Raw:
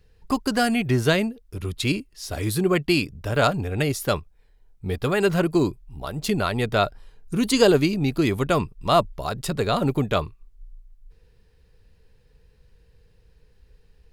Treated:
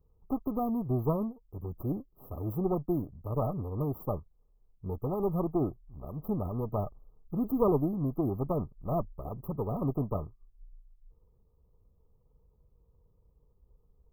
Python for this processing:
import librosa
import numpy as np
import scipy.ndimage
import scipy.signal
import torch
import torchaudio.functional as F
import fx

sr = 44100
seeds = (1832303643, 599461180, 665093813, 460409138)

y = fx.lower_of_two(x, sr, delay_ms=0.46)
y = fx.brickwall_bandstop(y, sr, low_hz=1300.0, high_hz=12000.0)
y = y * 10.0 ** (-8.0 / 20.0)